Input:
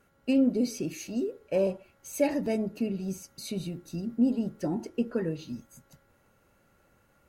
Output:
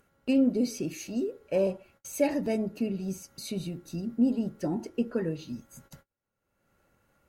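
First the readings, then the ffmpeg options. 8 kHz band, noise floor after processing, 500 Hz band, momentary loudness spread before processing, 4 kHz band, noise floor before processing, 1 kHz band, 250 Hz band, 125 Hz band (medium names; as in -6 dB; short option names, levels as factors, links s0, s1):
+0.5 dB, -84 dBFS, 0.0 dB, 12 LU, 0.0 dB, -66 dBFS, 0.0 dB, 0.0 dB, 0.0 dB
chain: -af "agate=range=0.00794:threshold=0.00126:ratio=16:detection=peak,acompressor=mode=upward:threshold=0.0112:ratio=2.5"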